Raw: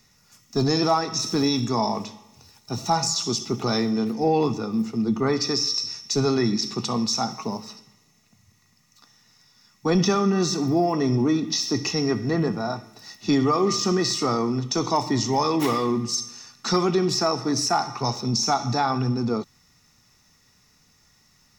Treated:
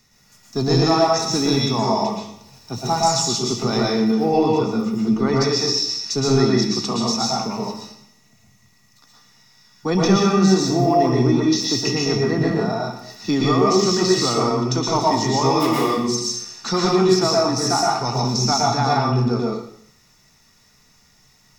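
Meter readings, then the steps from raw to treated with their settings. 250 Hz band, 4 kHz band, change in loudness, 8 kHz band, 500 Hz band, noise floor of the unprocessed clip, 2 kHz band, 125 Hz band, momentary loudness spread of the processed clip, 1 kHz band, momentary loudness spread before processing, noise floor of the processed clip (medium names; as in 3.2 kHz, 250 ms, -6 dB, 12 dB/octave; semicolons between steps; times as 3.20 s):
+4.0 dB, +4.0 dB, +4.5 dB, +3.5 dB, +5.5 dB, -61 dBFS, +4.5 dB, +5.5 dB, 9 LU, +5.0 dB, 9 LU, -56 dBFS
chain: plate-style reverb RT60 0.61 s, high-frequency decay 0.95×, pre-delay 105 ms, DRR -3 dB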